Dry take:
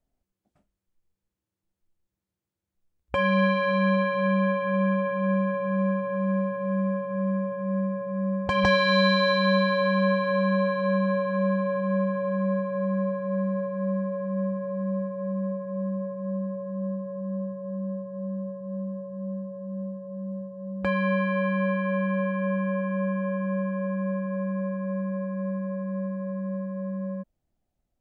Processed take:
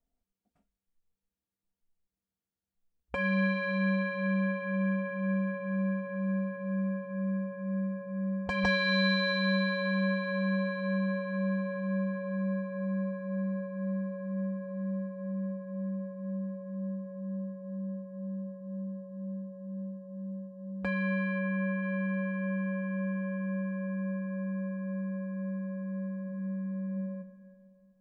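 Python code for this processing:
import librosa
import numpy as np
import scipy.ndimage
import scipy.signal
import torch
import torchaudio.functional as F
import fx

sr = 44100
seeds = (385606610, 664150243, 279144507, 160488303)

y = fx.lowpass(x, sr, hz=2800.0, slope=12, at=(21.38, 21.81), fade=0.02)
y = fx.reverb_throw(y, sr, start_s=26.17, length_s=0.68, rt60_s=2.7, drr_db=3.5)
y = y + 0.5 * np.pad(y, (int(4.3 * sr / 1000.0), 0))[:len(y)]
y = y * librosa.db_to_amplitude(-7.0)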